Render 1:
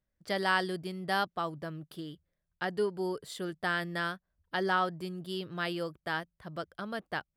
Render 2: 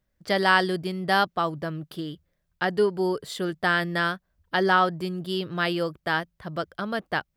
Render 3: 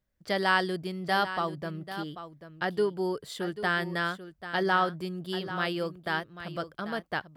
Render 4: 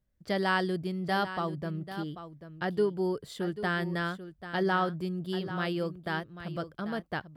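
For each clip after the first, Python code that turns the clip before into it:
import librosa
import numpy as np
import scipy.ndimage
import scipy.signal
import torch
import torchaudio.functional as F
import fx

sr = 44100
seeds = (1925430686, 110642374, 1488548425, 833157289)

y1 = fx.peak_eq(x, sr, hz=9600.0, db=-4.0, octaves=0.86)
y1 = y1 * 10.0 ** (8.5 / 20.0)
y2 = y1 + 10.0 ** (-12.0 / 20.0) * np.pad(y1, (int(790 * sr / 1000.0), 0))[:len(y1)]
y2 = y2 * 10.0 ** (-5.0 / 20.0)
y3 = fx.low_shelf(y2, sr, hz=380.0, db=9.0)
y3 = y3 * 10.0 ** (-4.5 / 20.0)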